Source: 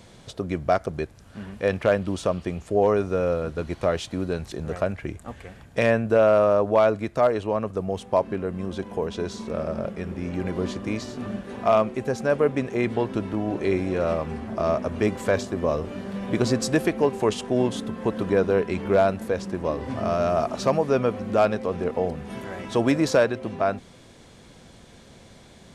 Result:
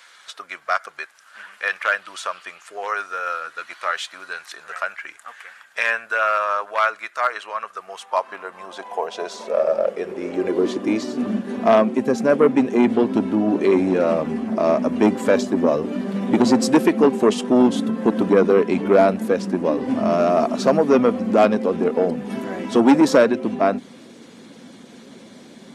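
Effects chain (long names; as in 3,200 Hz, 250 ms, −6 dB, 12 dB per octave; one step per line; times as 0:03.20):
spectral magnitudes quantised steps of 15 dB
high-pass filter sweep 1,400 Hz → 240 Hz, 0:07.72–0:11.34
saturating transformer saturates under 530 Hz
level +4.5 dB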